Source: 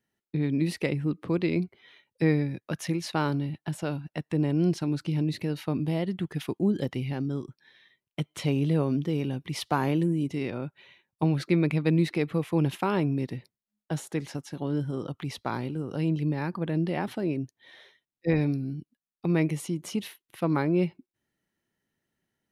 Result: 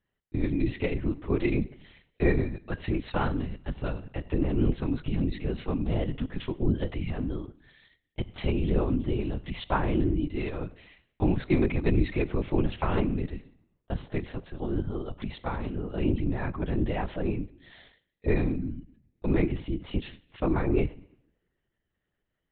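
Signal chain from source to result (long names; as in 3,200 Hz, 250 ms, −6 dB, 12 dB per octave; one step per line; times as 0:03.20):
coupled-rooms reverb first 0.7 s, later 1.9 s, from −28 dB, DRR 14 dB
linear-prediction vocoder at 8 kHz whisper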